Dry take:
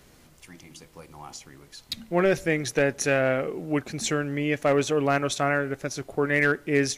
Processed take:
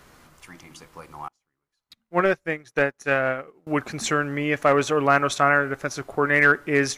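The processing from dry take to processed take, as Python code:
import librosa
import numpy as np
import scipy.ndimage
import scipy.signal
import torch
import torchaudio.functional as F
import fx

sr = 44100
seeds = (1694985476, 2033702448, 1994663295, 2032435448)

y = fx.peak_eq(x, sr, hz=1200.0, db=10.0, octaves=1.3)
y = fx.upward_expand(y, sr, threshold_db=-39.0, expansion=2.5, at=(1.28, 3.67))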